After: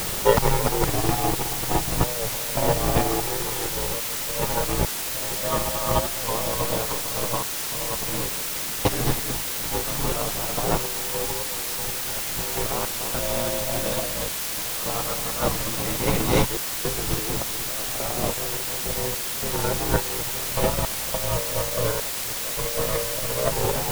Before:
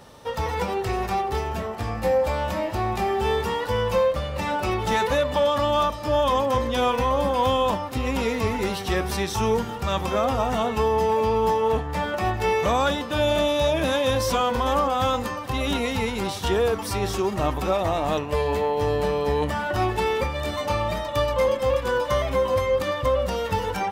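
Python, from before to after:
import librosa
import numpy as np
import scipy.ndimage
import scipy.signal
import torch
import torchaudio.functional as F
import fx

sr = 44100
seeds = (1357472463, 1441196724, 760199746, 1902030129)

p1 = fx.peak_eq(x, sr, hz=220.0, db=-3.0, octaves=0.77)
p2 = p1 * np.sin(2.0 * np.pi * 57.0 * np.arange(len(p1)) / sr)
p3 = fx.tilt_eq(p2, sr, slope=-2.0)
p4 = p3 + fx.echo_feedback(p3, sr, ms=296, feedback_pct=59, wet_db=-4, dry=0)
p5 = fx.over_compress(p4, sr, threshold_db=-28.0, ratio=-0.5)
p6 = fx.tremolo_random(p5, sr, seeds[0], hz=3.5, depth_pct=95)
p7 = fx.quant_dither(p6, sr, seeds[1], bits=6, dither='triangular')
p8 = fx.record_warp(p7, sr, rpm=45.0, depth_cents=100.0)
y = F.gain(torch.from_numpy(p8), 7.0).numpy()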